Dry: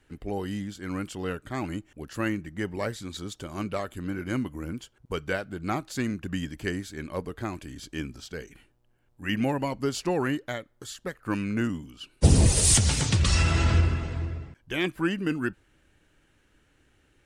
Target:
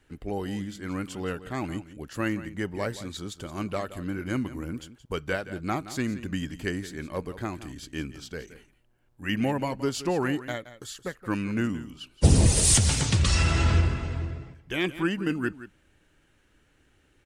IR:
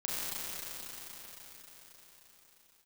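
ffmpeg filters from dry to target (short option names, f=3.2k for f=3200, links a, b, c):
-af "aecho=1:1:172:0.188"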